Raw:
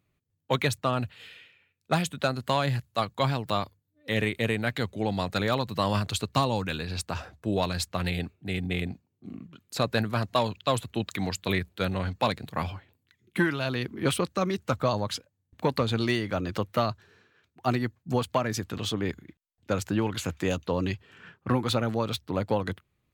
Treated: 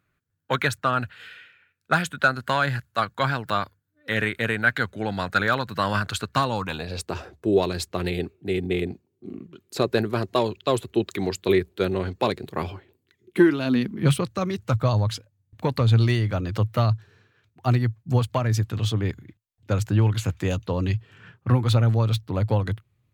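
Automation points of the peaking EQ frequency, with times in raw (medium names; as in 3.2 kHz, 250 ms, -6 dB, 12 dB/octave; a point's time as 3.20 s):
peaking EQ +15 dB 0.54 oct
6.50 s 1.5 kHz
7.07 s 380 Hz
13.44 s 380 Hz
14.31 s 110 Hz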